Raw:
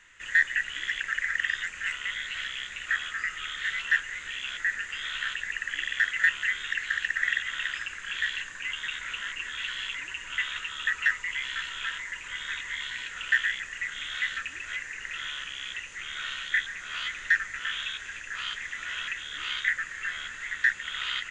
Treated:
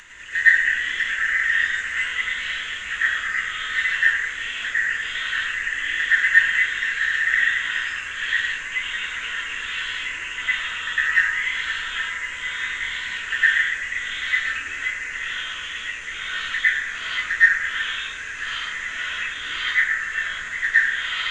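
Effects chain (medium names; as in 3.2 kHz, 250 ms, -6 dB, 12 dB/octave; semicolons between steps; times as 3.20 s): plate-style reverb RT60 1 s, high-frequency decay 0.5×, pre-delay 90 ms, DRR -10 dB; upward compressor, threshold -32 dBFS; trim -3 dB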